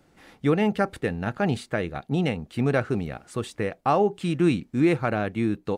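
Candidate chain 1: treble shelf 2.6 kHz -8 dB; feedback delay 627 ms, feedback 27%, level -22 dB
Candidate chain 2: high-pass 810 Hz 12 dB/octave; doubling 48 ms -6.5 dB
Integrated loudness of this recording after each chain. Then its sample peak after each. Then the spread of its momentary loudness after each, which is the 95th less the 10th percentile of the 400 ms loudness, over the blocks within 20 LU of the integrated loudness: -26.0 LUFS, -32.5 LUFS; -11.0 dBFS, -11.5 dBFS; 7 LU, 11 LU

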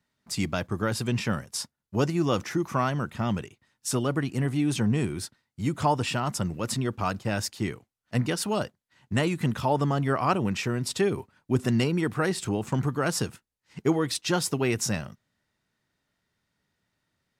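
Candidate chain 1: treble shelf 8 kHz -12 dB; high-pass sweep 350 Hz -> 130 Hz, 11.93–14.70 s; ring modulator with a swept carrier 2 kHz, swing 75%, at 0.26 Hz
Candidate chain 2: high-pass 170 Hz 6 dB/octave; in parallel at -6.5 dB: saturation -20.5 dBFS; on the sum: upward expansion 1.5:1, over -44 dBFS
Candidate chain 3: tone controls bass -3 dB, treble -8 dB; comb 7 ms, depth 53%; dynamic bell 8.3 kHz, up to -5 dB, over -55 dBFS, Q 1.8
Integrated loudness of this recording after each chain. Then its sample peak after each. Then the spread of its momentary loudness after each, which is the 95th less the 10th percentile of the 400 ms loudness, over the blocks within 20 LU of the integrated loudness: -26.5 LUFS, -29.0 LUFS, -28.0 LUFS; -8.5 dBFS, -9.5 dBFS, -9.0 dBFS; 12 LU, 9 LU, 10 LU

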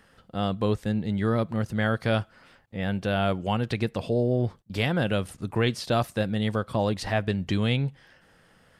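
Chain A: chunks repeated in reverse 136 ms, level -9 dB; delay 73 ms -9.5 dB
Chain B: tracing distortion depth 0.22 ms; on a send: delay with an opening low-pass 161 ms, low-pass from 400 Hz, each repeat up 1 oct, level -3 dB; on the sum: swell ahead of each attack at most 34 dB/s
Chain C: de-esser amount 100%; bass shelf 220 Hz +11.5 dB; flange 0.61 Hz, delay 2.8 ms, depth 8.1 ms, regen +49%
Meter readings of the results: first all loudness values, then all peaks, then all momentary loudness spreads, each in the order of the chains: -26.5 LUFS, -24.5 LUFS, -25.0 LUFS; -11.0 dBFS, -10.0 dBFS, -8.5 dBFS; 6 LU, 6 LU, 7 LU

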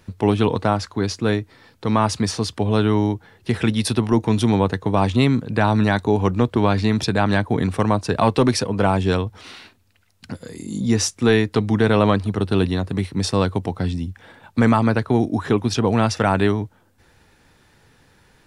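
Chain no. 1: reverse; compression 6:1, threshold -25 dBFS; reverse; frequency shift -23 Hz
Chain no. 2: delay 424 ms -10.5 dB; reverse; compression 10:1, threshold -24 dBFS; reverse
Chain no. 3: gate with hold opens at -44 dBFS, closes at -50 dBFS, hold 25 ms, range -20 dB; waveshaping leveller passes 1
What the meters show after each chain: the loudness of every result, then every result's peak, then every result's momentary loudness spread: -30.0 LUFS, -29.5 LUFS, -17.5 LUFS; -14.5 dBFS, -13.5 dBFS, -6.0 dBFS; 6 LU, 4 LU, 8 LU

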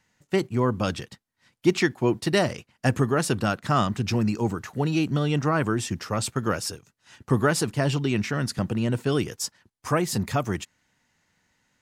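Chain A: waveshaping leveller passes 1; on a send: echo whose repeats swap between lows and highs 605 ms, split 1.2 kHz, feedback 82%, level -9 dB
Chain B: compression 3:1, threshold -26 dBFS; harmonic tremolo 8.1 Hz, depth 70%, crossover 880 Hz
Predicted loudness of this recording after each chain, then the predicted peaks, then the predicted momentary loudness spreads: -22.0 LUFS, -34.0 LUFS; -6.5 dBFS, -17.0 dBFS; 10 LU, 7 LU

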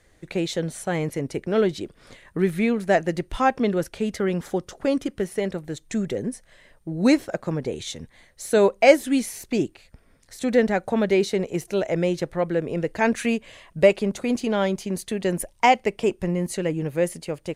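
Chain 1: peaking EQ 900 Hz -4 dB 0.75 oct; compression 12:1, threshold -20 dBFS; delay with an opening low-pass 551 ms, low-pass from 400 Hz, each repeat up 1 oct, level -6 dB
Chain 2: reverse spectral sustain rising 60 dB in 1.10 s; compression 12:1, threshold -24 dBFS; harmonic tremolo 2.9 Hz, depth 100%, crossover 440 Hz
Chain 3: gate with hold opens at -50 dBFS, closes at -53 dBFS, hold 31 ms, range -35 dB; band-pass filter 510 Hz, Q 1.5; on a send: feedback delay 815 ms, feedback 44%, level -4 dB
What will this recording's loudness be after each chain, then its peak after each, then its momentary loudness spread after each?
-27.0 LUFS, -34.0 LUFS, -25.5 LUFS; -10.0 dBFS, -15.5 dBFS, -4.5 dBFS; 6 LU, 4 LU, 10 LU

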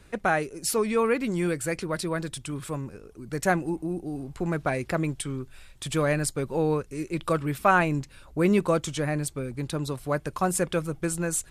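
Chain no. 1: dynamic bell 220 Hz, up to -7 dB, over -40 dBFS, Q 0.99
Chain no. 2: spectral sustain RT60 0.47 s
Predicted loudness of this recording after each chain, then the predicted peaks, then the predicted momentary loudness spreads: -29.5 LUFS, -26.0 LUFS; -7.5 dBFS, -6.5 dBFS; 11 LU, 10 LU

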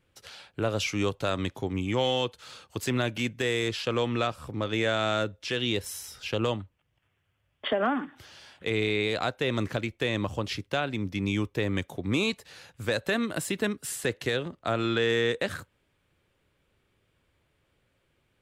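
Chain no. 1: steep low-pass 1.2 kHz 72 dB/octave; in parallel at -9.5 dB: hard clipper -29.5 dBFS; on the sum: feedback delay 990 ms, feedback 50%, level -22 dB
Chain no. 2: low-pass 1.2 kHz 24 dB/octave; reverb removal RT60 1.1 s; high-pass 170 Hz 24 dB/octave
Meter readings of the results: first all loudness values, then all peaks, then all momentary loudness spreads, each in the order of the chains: -29.5 LUFS, -33.0 LUFS; -15.0 dBFS, -16.5 dBFS; 13 LU, 7 LU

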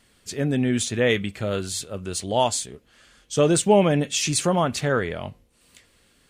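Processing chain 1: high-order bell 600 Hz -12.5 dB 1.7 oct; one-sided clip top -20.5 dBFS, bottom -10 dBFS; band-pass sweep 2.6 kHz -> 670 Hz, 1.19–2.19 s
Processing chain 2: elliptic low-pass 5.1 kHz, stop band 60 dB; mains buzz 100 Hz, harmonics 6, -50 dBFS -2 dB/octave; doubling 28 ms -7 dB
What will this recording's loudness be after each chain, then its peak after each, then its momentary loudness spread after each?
-37.5 LUFS, -23.0 LUFS; -15.0 dBFS, -5.5 dBFS; 18 LU, 15 LU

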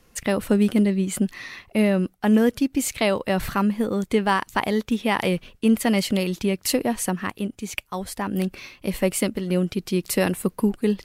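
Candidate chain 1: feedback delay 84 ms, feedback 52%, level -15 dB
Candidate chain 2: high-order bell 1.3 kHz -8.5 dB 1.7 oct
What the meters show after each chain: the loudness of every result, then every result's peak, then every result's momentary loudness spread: -23.0 LUFS, -24.0 LUFS; -7.5 dBFS, -8.5 dBFS; 9 LU, 10 LU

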